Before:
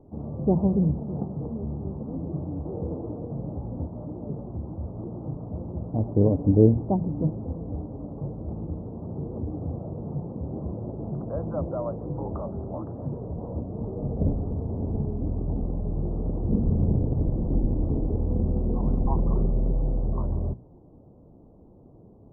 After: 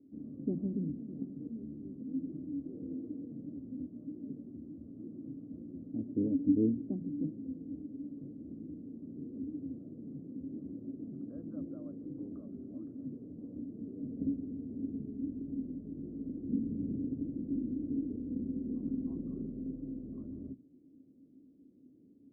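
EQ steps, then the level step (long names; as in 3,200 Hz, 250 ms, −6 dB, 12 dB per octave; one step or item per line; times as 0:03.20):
formant filter i
+1.5 dB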